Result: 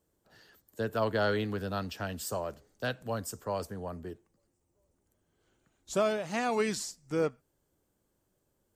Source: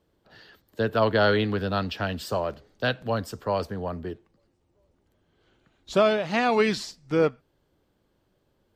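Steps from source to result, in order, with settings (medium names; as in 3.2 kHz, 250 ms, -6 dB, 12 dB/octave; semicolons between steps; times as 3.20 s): resonant high shelf 5.5 kHz +11 dB, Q 1.5; trim -7.5 dB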